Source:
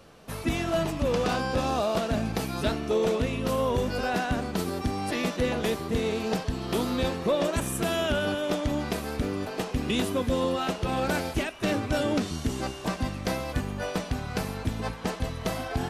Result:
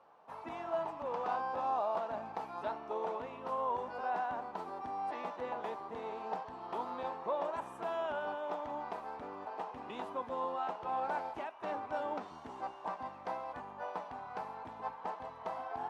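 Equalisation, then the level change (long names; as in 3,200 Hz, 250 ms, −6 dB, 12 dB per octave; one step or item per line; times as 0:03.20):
resonant band-pass 900 Hz, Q 4
+1.0 dB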